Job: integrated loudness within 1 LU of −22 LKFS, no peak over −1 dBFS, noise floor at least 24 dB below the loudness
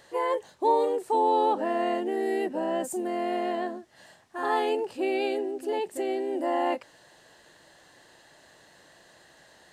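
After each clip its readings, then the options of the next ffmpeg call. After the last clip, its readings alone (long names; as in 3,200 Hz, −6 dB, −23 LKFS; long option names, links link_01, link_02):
integrated loudness −28.0 LKFS; sample peak −12.0 dBFS; target loudness −22.0 LKFS
→ -af "volume=6dB"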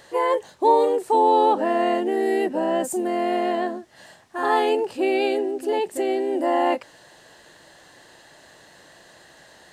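integrated loudness −22.0 LKFS; sample peak −6.0 dBFS; background noise floor −51 dBFS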